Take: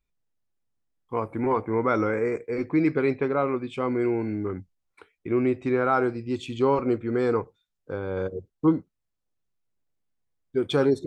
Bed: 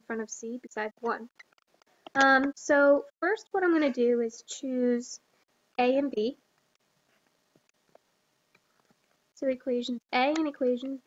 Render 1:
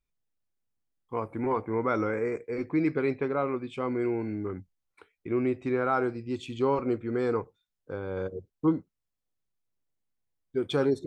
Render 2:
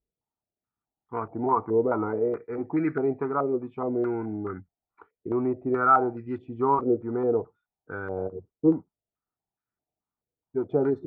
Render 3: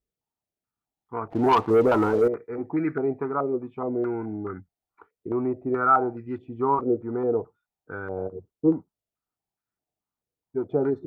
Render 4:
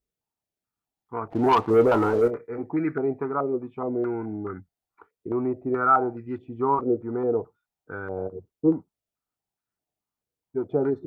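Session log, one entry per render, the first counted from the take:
trim -4 dB
comb of notches 540 Hz; step-sequenced low-pass 4.7 Hz 520–1500 Hz
1.30–2.28 s: waveshaping leveller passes 2
1.71–2.64 s: doubling 26 ms -11 dB

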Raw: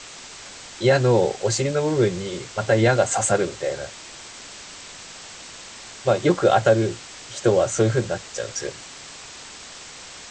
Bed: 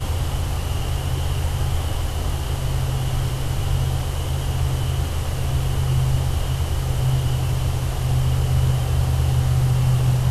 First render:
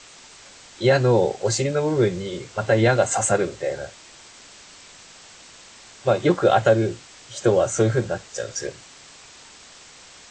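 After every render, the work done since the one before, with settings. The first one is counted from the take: noise print and reduce 6 dB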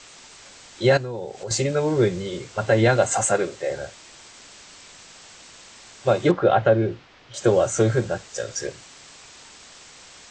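0.97–1.51 s: compression 3:1, threshold -32 dBFS; 3.23–3.70 s: bass shelf 140 Hz -11.5 dB; 6.31–7.34 s: distance through air 260 m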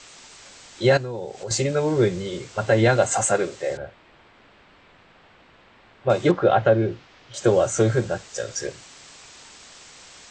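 3.77–6.10 s: distance through air 480 m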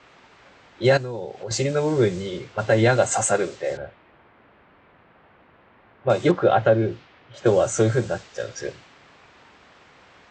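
level-controlled noise filter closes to 1.8 kHz, open at -17.5 dBFS; high-pass 52 Hz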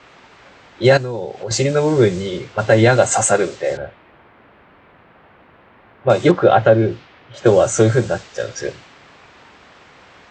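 trim +6 dB; peak limiter -1 dBFS, peak gain reduction 1.5 dB

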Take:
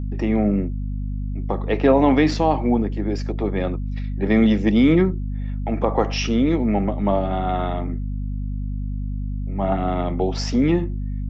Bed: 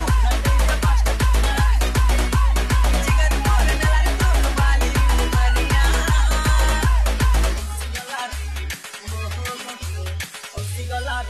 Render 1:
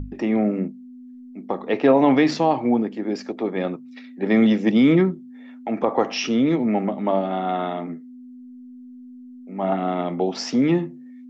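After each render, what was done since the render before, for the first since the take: hum notches 50/100/150/200 Hz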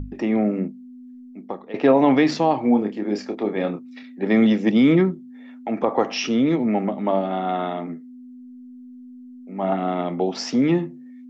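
1.08–1.74 s: fade out equal-power, to -17 dB; 2.61–4.03 s: doubling 29 ms -7 dB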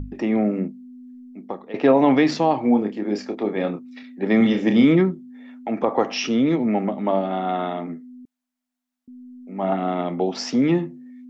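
4.37–4.85 s: flutter echo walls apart 5.9 m, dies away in 0.34 s; 8.25–9.08 s: elliptic high-pass 640 Hz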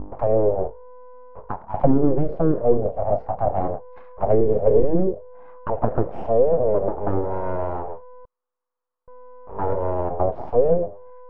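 full-wave rectifier; touch-sensitive low-pass 350–1100 Hz down, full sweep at -12 dBFS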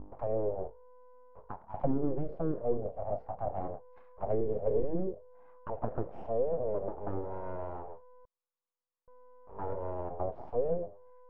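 trim -13.5 dB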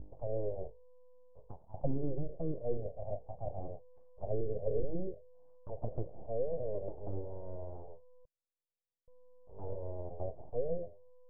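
FFT filter 140 Hz 0 dB, 210 Hz -8 dB, 590 Hz -4 dB, 1.5 kHz -29 dB

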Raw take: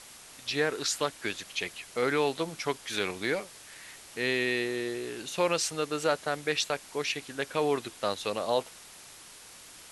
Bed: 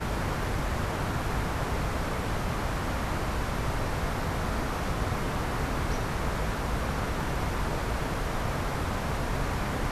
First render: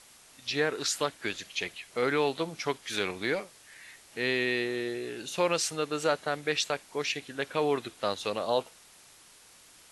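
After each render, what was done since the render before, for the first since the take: noise print and reduce 6 dB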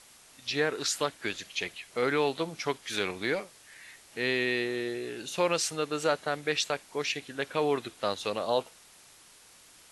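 no audible change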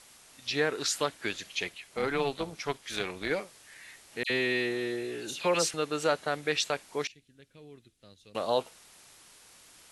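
1.69–3.31 s: AM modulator 280 Hz, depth 40%; 4.23–5.74 s: phase dispersion lows, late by 69 ms, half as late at 2.4 kHz; 7.07–8.35 s: amplifier tone stack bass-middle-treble 10-0-1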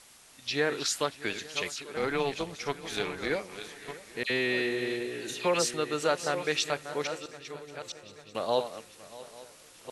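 chunks repeated in reverse 660 ms, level -10 dB; shuffle delay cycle 845 ms, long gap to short 3:1, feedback 51%, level -19 dB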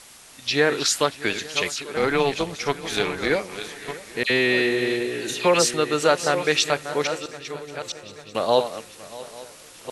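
trim +8.5 dB

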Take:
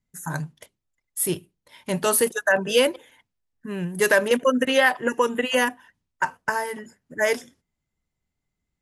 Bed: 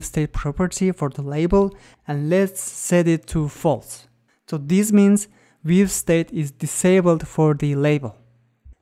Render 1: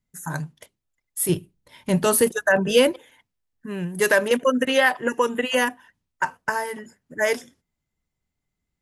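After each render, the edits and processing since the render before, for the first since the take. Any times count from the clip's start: 1.29–2.93 s: bass shelf 270 Hz +10 dB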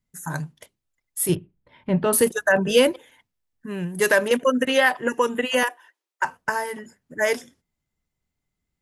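1.35–2.13 s: distance through air 410 m; 5.63–6.25 s: steep high-pass 330 Hz 72 dB/octave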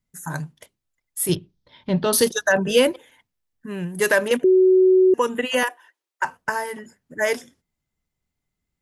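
1.31–2.55 s: high-order bell 4.5 kHz +12.5 dB 1.1 oct; 4.44–5.14 s: bleep 373 Hz -11 dBFS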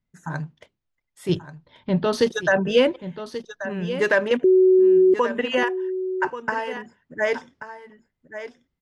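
distance through air 160 m; delay 1134 ms -12 dB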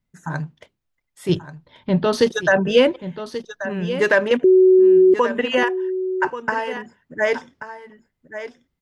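trim +3 dB

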